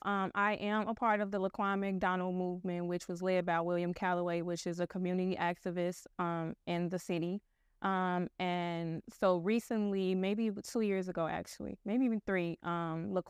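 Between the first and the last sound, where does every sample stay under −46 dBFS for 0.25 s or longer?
0:07.38–0:07.82

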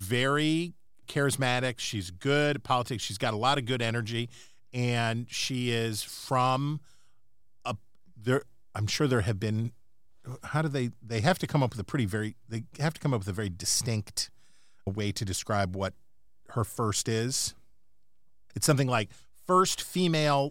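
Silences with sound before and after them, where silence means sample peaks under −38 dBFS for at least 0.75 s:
0:06.77–0:07.65
0:17.50–0:18.56

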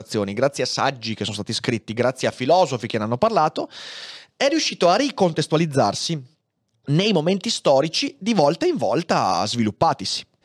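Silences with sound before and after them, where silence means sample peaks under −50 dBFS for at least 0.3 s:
0:06.33–0:06.85

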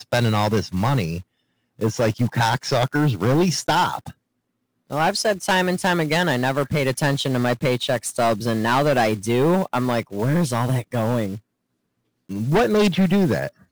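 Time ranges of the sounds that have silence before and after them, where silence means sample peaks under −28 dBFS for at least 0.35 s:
0:01.81–0:04.09
0:04.91–0:11.37

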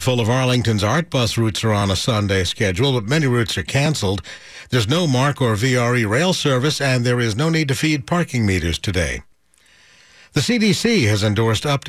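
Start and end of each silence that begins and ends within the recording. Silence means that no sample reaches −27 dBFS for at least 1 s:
0:09.20–0:10.36

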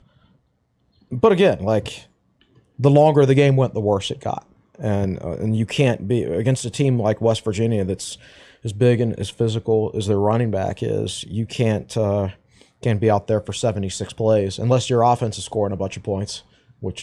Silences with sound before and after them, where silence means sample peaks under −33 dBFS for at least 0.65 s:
0:01.99–0:02.79

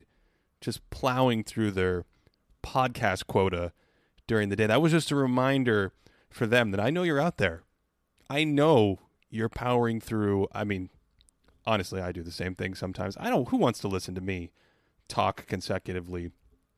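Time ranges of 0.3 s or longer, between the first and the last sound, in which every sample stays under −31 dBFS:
0:02.00–0:02.64
0:03.67–0:04.29
0:05.87–0:06.41
0:07.54–0:08.30
0:08.95–0:09.35
0:10.84–0:11.67
0:14.44–0:15.10

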